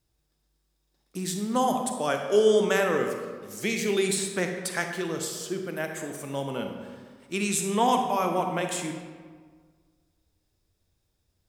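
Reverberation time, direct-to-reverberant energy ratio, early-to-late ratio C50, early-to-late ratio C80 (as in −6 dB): 1.6 s, 4.0 dB, 5.0 dB, 6.5 dB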